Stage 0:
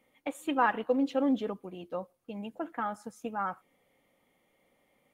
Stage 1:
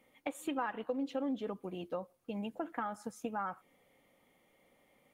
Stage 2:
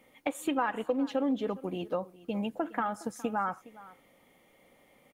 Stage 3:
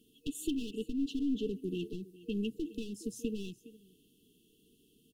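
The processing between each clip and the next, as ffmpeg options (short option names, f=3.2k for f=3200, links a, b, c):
-af "acompressor=threshold=-36dB:ratio=4,volume=1.5dB"
-af "aecho=1:1:413:0.106,volume=6.5dB"
-af "bandreject=f=60:t=h:w=6,bandreject=f=120:t=h:w=6,aeval=exprs='clip(val(0),-1,0.0178)':c=same,afftfilt=real='re*(1-between(b*sr/4096,470,2600))':imag='im*(1-between(b*sr/4096,470,2600))':win_size=4096:overlap=0.75"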